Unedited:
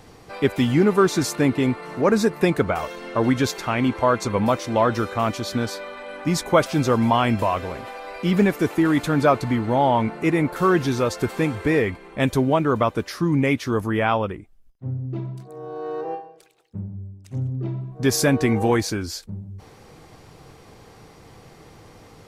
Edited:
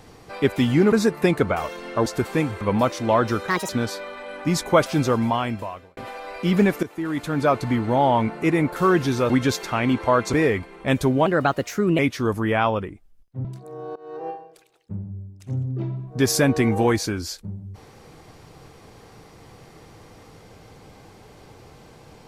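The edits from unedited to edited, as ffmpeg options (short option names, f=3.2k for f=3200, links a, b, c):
-filter_complex "[0:a]asplit=14[a][b][c][d][e][f][g][h][i][j][k][l][m][n];[a]atrim=end=0.922[o];[b]atrim=start=2.108:end=3.252[p];[c]atrim=start=11.098:end=11.652[q];[d]atrim=start=4.278:end=5.154[r];[e]atrim=start=5.15:end=5.49,asetpts=PTS-STARTPTS,asetrate=71442,aresample=44100[s];[f]atrim=start=5.486:end=7.77,asetpts=PTS-STARTPTS,afade=t=out:st=1.284:d=1[t];[g]atrim=start=7.77:end=8.63,asetpts=PTS-STARTPTS,afade=t=in:d=0.004:c=hsin,afade=t=out:st=0.856:d=0.004:c=hsin:silence=0.177828[u];[h]atrim=start=8.63:end=11.102,asetpts=PTS-STARTPTS,afade=t=in:d=0.91:silence=0.177828[v];[i]atrim=start=3.248:end=4.282[w];[j]atrim=start=11.648:end=12.584[x];[k]atrim=start=12.58:end=13.46,asetpts=PTS-STARTPTS,asetrate=53361,aresample=44100[y];[l]atrim=start=13.456:end=14.922[z];[m]atrim=start=15.288:end=15.8,asetpts=PTS-STARTPTS,afade=t=out:st=0.508:d=0.004:c=hsin:silence=0.0707946[aa];[n]atrim=start=15.8,asetpts=PTS-STARTPTS,afade=t=in:d=0.4:silence=0.0707946[ab];[o][p]acrossfade=d=0.004:c1=hsin:c2=hsin[ac];[ac][q]acrossfade=d=0.004:c1=hsin:c2=hsin[ad];[ad][r]acrossfade=d=0.004:c1=hsin:c2=hsin[ae];[ae][s]acrossfade=d=0.004:c1=hsin:c2=hsin[af];[t][u][v]concat=n=3:v=0:a=1[ag];[af][ag]acrossfade=d=0.004:c1=hsin:c2=hsin[ah];[ah][w]acrossfade=d=0.004:c1=hsin:c2=hsin[ai];[ai][x]acrossfade=d=0.004:c1=hsin:c2=hsin[aj];[aj][y]acrossfade=d=0.004:c1=hsin:c2=hsin[ak];[ak][z]acrossfade=d=0.004:c1=hsin:c2=hsin[al];[aa][ab]concat=n=2:v=0:a=1[am];[al][am]acrossfade=d=0.004:c1=hsin:c2=hsin"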